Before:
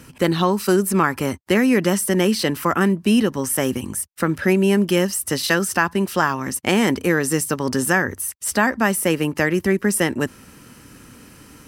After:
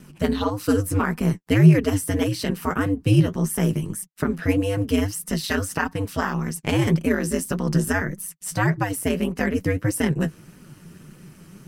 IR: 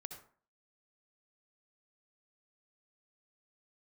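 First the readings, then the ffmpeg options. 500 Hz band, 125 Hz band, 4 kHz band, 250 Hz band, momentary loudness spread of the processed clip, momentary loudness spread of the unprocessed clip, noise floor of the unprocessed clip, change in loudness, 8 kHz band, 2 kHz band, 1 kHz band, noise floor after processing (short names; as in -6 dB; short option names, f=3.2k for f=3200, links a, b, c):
-5.5 dB, +4.5 dB, -6.5 dB, -2.5 dB, 7 LU, 6 LU, -47 dBFS, -3.0 dB, -7.0 dB, -6.5 dB, -6.5 dB, -50 dBFS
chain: -af "aeval=exprs='val(0)*sin(2*PI*100*n/s)':c=same,flanger=delay=3.9:depth=8.3:regen=35:speed=1.7:shape=sinusoidal,equalizer=f=160:w=1.7:g=14.5"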